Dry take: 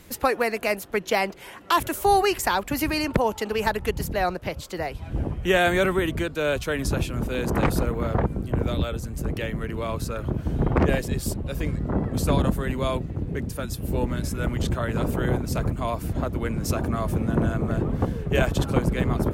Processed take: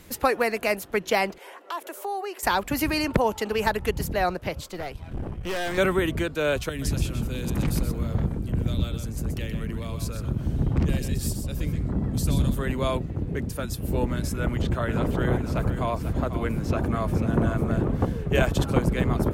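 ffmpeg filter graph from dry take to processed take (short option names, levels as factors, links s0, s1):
-filter_complex "[0:a]asettb=1/sr,asplit=3[s0][s1][s2];[s0]atrim=end=1.384[s3];[s1]atrim=start=1.38:end=2.43,asetpts=PTS-STARTPTS,afade=t=in:d=0.004:c=qsin,afade=t=out:st=1.046:d=0.004:c=qsin,highpass=f=430:w=0.5412,highpass=f=430:w=1.3066,tiltshelf=f=920:g=6,acompressor=threshold=0.0141:ratio=2:attack=3.2:release=140:knee=1:detection=peak[s4];[s2]atrim=start=2.426[s5];[s3][s4]acrossfade=d=0.004:c1=hsin:c2=qsin[s6];[s6][s5]acrossfade=d=0.004:c1=qsin:c2=hsin,asettb=1/sr,asplit=3[s7][s8][s9];[s7]atrim=end=4.684[s10];[s8]atrim=start=4.68:end=5.78,asetpts=PTS-STARTPTS,afade=t=in:d=0.004:c=qsin,afade=t=out:st=1.096:d=0.004:c=qsin,bandreject=f=7000:w=29,aeval=exprs='(tanh(22.4*val(0)+0.65)-tanh(0.65))/22.4':c=same[s11];[s9]atrim=start=5.776[s12];[s10][s11]acrossfade=d=0.004:c1=hsin:c2=qsin[s13];[s13][s12]acrossfade=d=0.004:c1=qsin:c2=hsin,asettb=1/sr,asplit=3[s14][s15][s16];[s14]atrim=end=6.694[s17];[s15]atrim=start=6.69:end=12.59,asetpts=PTS-STARTPTS,afade=t=in:d=0.004:c=qsin,afade=t=out:st=5.896:d=0.004:c=qsin,acrossover=split=270|3000[s18][s19][s20];[s19]acompressor=threshold=0.00794:ratio=3:attack=3.2:release=140:knee=2.83:detection=peak[s21];[s18][s21][s20]amix=inputs=3:normalize=0,aecho=1:1:126:0.422,atrim=end_sample=260190[s22];[s16]atrim=start=12.586[s23];[s17][s22]acrossfade=d=0.004:c1=hsin:c2=qsin[s24];[s24][s23]acrossfade=d=0.004:c1=qsin:c2=hsin,asettb=1/sr,asplit=3[s25][s26][s27];[s25]atrim=end=14.364[s28];[s26]atrim=start=14.36:end=17.91,asetpts=PTS-STARTPTS,afade=t=in:d=0.004:c=qsin,afade=t=out:st=3.546:d=0.004:c=qsin,aecho=1:1:494:0.299,atrim=end_sample=156555,acrossover=split=3800[s29][s30];[s30]acompressor=threshold=0.00355:ratio=4:attack=1:release=60[s31];[s29][s31]amix=inputs=2:normalize=0[s32];[s27]atrim=start=17.906[s33];[s28][s32]acrossfade=d=0.004:c1=hsin:c2=qsin[s34];[s34][s33]acrossfade=d=0.004:c1=qsin:c2=hsin"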